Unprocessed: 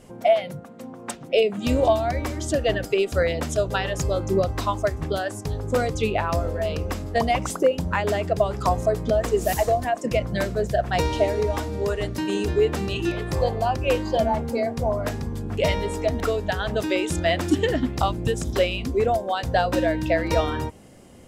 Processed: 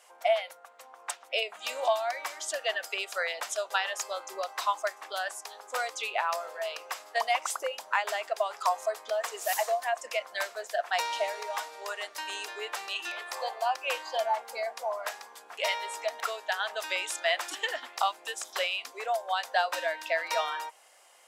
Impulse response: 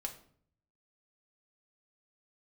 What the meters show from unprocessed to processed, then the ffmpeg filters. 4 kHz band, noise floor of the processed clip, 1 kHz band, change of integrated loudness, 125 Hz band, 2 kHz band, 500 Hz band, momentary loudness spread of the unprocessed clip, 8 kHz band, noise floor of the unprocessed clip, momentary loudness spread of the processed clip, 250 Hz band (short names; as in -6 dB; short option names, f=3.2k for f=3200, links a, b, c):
-1.5 dB, -55 dBFS, -4.0 dB, -8.0 dB, under -40 dB, -1.5 dB, -11.0 dB, 5 LU, -1.5 dB, -41 dBFS, 8 LU, under -30 dB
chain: -af "highpass=f=760:w=0.5412,highpass=f=760:w=1.3066,volume=-1.5dB"